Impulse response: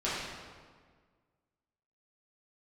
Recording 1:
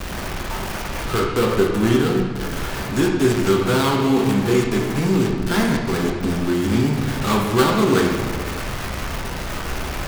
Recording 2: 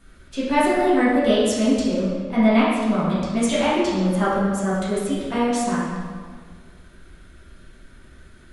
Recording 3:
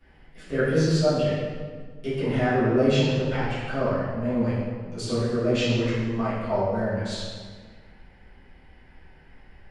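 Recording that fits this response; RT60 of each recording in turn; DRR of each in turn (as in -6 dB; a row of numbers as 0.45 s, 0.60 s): 2; 1.7 s, 1.7 s, 1.7 s; -1.0 dB, -10.5 dB, -17.5 dB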